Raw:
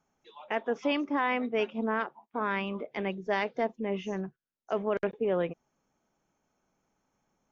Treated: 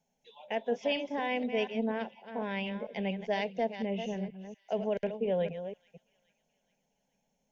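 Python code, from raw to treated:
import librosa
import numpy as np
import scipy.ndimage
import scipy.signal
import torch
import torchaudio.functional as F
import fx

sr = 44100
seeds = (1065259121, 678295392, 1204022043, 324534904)

y = fx.reverse_delay(x, sr, ms=239, wet_db=-9.5)
y = fx.peak_eq(y, sr, hz=3000.0, db=3.0, octaves=0.4)
y = fx.fixed_phaser(y, sr, hz=330.0, stages=6)
y = fx.echo_wet_highpass(y, sr, ms=421, feedback_pct=49, hz=2100.0, wet_db=-20.0)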